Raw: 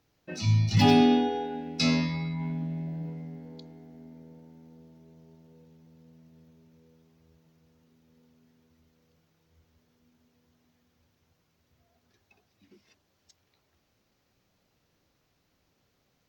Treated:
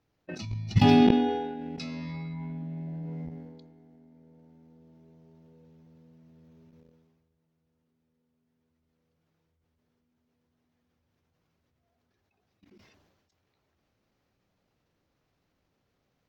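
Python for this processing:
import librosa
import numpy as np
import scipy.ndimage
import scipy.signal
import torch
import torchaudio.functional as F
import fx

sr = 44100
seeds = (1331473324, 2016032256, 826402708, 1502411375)

y = fx.high_shelf(x, sr, hz=4000.0, db=-10.0)
y = fx.level_steps(y, sr, step_db=20)
y = fx.dynamic_eq(y, sr, hz=610.0, q=0.71, threshold_db=-43.0, ratio=4.0, max_db=-3)
y = fx.sustainer(y, sr, db_per_s=40.0)
y = y * librosa.db_to_amplitude(3.5)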